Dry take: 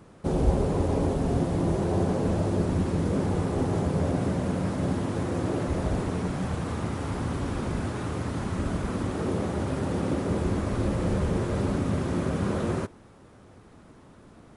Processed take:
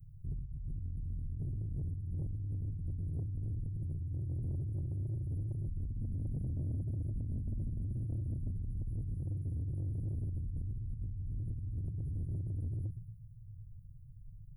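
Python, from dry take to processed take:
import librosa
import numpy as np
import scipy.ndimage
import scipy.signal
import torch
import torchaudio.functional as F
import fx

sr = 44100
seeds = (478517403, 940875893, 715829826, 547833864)

y = scipy.signal.sosfilt(scipy.signal.cheby2(4, 60, [340.0, 8000.0], 'bandstop', fs=sr, output='sos'), x)
y = fx.peak_eq(y, sr, hz=6700.0, db=11.5, octaves=1.5)
y = y + 0.68 * np.pad(y, (int(7.2 * sr / 1000.0), 0))[:len(y)]
y = fx.echo_feedback(y, sr, ms=116, feedback_pct=46, wet_db=-11.0)
y = fx.over_compress(y, sr, threshold_db=-38.0, ratio=-1.0)
y = fx.peak_eq(y, sr, hz=460.0, db=-9.0, octaves=2.3)
y = fx.hum_notches(y, sr, base_hz=60, count=3)
y = 10.0 ** (-38.5 / 20.0) * np.tanh(y / 10.0 ** (-38.5 / 20.0))
y = fx.small_body(y, sr, hz=(220.0, 620.0), ring_ms=45, db=7, at=(5.89, 8.53), fade=0.02)
y = y * librosa.db_to_amplitude(6.0)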